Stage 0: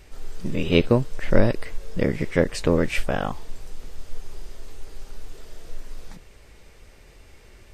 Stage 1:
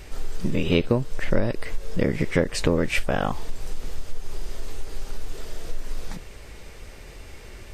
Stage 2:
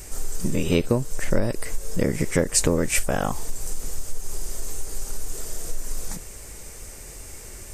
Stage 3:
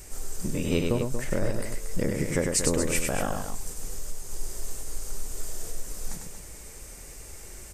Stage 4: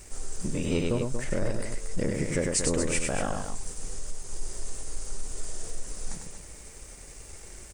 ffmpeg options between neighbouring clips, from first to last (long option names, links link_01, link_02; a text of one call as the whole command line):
ffmpeg -i in.wav -af "acompressor=threshold=-27dB:ratio=3,volume=7.5dB" out.wav
ffmpeg -i in.wav -af "highshelf=frequency=5300:width_type=q:width=1.5:gain=13" out.wav
ffmpeg -i in.wav -af "aecho=1:1:99.13|233.2:0.631|0.355,volume=-5.5dB" out.wav
ffmpeg -i in.wav -af "asoftclip=type=tanh:threshold=-15.5dB,aresample=22050,aresample=44100,aeval=exprs='sgn(val(0))*max(abs(val(0))-0.00178,0)':channel_layout=same" out.wav